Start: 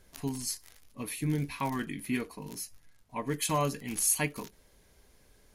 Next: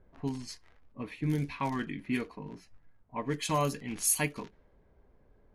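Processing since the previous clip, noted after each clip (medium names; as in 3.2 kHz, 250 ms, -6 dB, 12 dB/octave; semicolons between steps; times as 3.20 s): level-controlled noise filter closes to 1 kHz, open at -24.5 dBFS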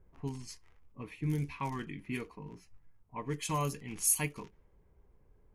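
fifteen-band graphic EQ 250 Hz -7 dB, 630 Hz -9 dB, 1.6 kHz -7 dB, 4 kHz -8 dB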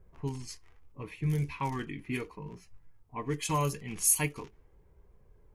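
flange 0.77 Hz, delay 1.6 ms, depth 1.2 ms, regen -61%; trim +7.5 dB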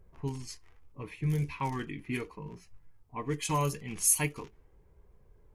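wow and flutter 21 cents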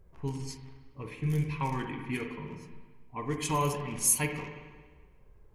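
reverberation RT60 1.4 s, pre-delay 43 ms, DRR 4 dB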